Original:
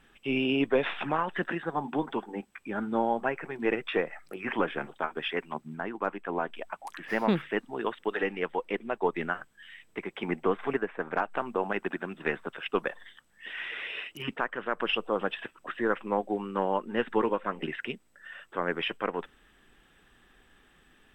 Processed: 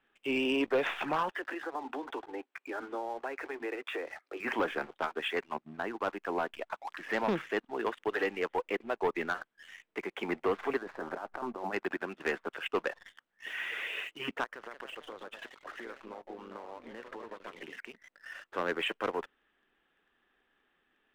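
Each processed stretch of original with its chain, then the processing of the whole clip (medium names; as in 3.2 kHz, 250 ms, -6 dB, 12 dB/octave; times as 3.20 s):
1.31–4.40 s: steep high-pass 250 Hz 96 dB/octave + compression, threshold -33 dBFS
10.81–11.73 s: low-pass 1.4 kHz + band-stop 460 Hz, Q 6.8 + compressor with a negative ratio -37 dBFS
14.44–18.31 s: compression 10:1, threshold -40 dBFS + ever faster or slower copies 195 ms, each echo +2 st, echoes 2, each echo -6 dB
whole clip: three-band isolator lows -14 dB, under 250 Hz, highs -21 dB, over 4.1 kHz; waveshaping leveller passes 2; trim -7 dB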